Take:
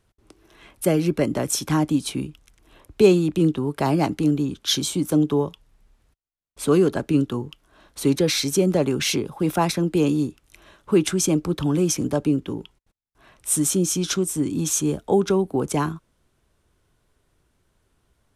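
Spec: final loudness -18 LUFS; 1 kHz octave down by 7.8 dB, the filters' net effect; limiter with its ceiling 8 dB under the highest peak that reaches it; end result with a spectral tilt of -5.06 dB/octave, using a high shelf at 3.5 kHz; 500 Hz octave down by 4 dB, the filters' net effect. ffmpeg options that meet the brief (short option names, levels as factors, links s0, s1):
-af "equalizer=f=500:t=o:g=-4,equalizer=f=1000:t=o:g=-8.5,highshelf=f=3500:g=-3.5,volume=2.37,alimiter=limit=0.422:level=0:latency=1"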